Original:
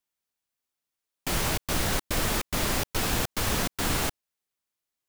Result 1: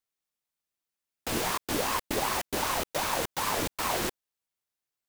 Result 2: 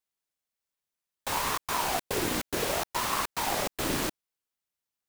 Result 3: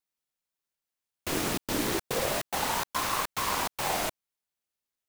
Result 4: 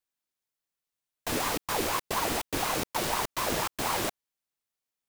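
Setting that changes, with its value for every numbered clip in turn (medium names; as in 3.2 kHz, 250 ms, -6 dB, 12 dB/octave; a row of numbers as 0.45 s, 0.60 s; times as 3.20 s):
ring modulator with a swept carrier, at: 2.6 Hz, 0.63 Hz, 0.31 Hz, 4.1 Hz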